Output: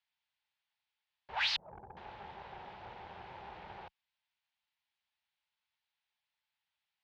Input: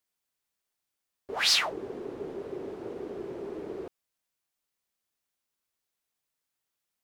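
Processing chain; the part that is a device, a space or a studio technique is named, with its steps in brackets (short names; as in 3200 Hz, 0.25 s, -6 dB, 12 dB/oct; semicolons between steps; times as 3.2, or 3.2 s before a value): 1.56–1.97 steep low-pass 520 Hz 36 dB/oct; scooped metal amplifier (tube stage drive 33 dB, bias 0.6; speaker cabinet 75–3700 Hz, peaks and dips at 190 Hz +4 dB, 430 Hz -9 dB, 870 Hz +9 dB, 1200 Hz -4 dB; passive tone stack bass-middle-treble 10-0-10); gain +9.5 dB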